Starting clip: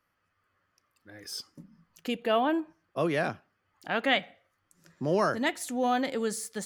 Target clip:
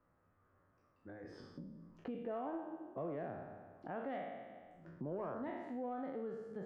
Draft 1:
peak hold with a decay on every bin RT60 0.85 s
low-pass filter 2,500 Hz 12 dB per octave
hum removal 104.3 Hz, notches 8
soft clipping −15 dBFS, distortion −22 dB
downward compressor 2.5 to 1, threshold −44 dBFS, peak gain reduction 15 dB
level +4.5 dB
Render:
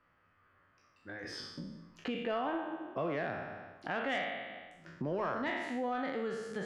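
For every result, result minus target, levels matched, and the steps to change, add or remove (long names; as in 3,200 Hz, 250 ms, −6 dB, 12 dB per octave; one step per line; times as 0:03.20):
2,000 Hz band +9.5 dB; downward compressor: peak gain reduction −5.5 dB
change: low-pass filter 820 Hz 12 dB per octave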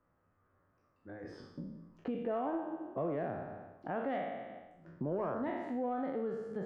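downward compressor: peak gain reduction −6.5 dB
change: downward compressor 2.5 to 1, threshold −54.5 dBFS, peak gain reduction 20.5 dB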